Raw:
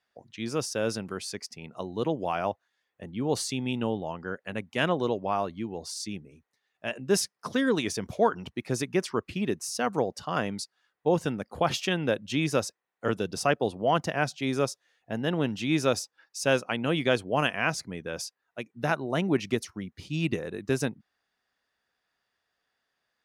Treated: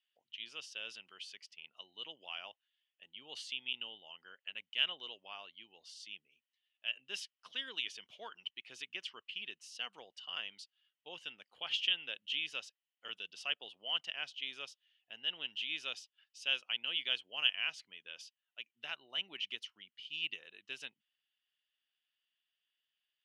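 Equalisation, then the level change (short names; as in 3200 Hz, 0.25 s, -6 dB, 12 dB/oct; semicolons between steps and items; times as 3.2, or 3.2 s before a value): band-pass 3000 Hz, Q 10; +6.5 dB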